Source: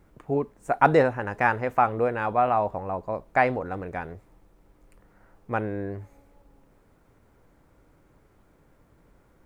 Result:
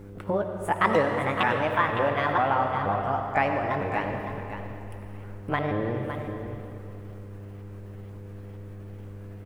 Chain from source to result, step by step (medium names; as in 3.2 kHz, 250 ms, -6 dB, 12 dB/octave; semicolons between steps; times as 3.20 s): sawtooth pitch modulation +7 st, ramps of 476 ms; compression 2:1, threshold -36 dBFS, peak gain reduction 12.5 dB; mains buzz 100 Hz, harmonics 5, -51 dBFS -4 dB/octave; delay 561 ms -9.5 dB; algorithmic reverb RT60 2.7 s, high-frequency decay 0.9×, pre-delay 35 ms, DRR 4.5 dB; trim +7.5 dB